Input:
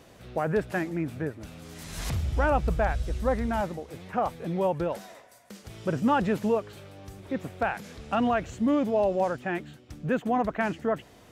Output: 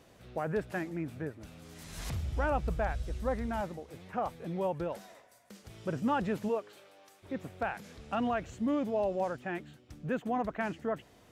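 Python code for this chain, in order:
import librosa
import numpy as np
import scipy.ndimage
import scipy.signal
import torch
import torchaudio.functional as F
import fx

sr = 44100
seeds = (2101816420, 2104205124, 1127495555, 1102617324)

y = fx.highpass(x, sr, hz=fx.line((6.48, 220.0), (7.22, 800.0)), slope=12, at=(6.48, 7.22), fade=0.02)
y = y * librosa.db_to_amplitude(-6.5)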